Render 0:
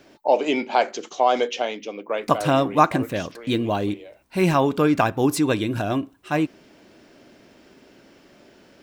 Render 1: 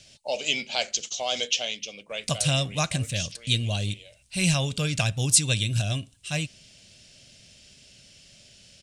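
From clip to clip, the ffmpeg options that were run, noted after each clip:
ffmpeg -i in.wav -af "firequalizer=gain_entry='entry(120,0);entry(310,-26);entry(580,-14);entry(920,-24);entry(2800,1);entry(5400,5);entry(9100,10);entry(14000,-20)':delay=0.05:min_phase=1,volume=5dB" out.wav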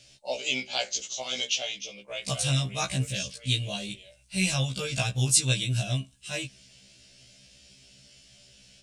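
ffmpeg -i in.wav -af "afftfilt=real='re*1.73*eq(mod(b,3),0)':imag='im*1.73*eq(mod(b,3),0)':win_size=2048:overlap=0.75" out.wav

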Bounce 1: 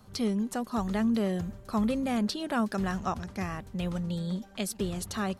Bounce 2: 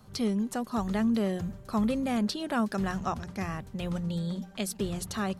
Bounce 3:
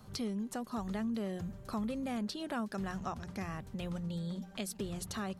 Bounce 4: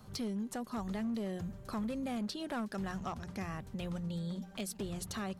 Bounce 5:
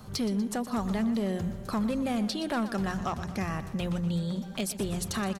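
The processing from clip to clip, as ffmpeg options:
ffmpeg -i in.wav -af "equalizer=frequency=140:width_type=o:width=0.34:gain=6,bandreject=frequency=60:width_type=h:width=6,bandreject=frequency=120:width_type=h:width=6,bandreject=frequency=180:width_type=h:width=6" out.wav
ffmpeg -i in.wav -af "acompressor=threshold=-41dB:ratio=2" out.wav
ffmpeg -i in.wav -af "asoftclip=type=hard:threshold=-32dB" out.wav
ffmpeg -i in.wav -af "aecho=1:1:121|242|363|484|605|726:0.211|0.118|0.0663|0.0371|0.0208|0.0116,volume=8dB" out.wav

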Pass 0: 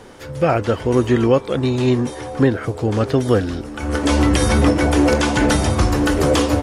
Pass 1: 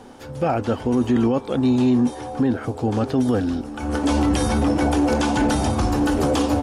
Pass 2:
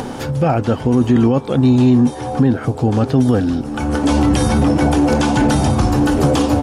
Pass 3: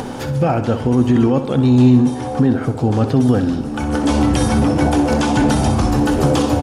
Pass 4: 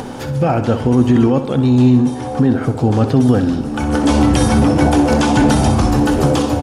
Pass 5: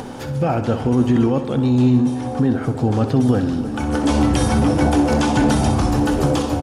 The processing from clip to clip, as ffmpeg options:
ffmpeg -i in.wav -af "equalizer=frequency=250:width_type=o:width=0.33:gain=10,equalizer=frequency=800:width_type=o:width=0.33:gain=8,equalizer=frequency=2000:width_type=o:width=0.33:gain=-5,alimiter=limit=-7dB:level=0:latency=1:release=11,volume=-4.5dB" out.wav
ffmpeg -i in.wav -af "equalizer=frequency=140:width=2:gain=8.5,acompressor=mode=upward:threshold=-19dB:ratio=2.5,volume=4dB" out.wav
ffmpeg -i in.wav -af "aecho=1:1:64|128|192|256|320|384:0.282|0.155|0.0853|0.0469|0.0258|0.0142,volume=-1dB" out.wav
ffmpeg -i in.wav -af "dynaudnorm=framelen=140:gausssize=7:maxgain=11.5dB,volume=-1dB" out.wav
ffmpeg -i in.wav -af "aecho=1:1:311:0.178,volume=-4dB" out.wav

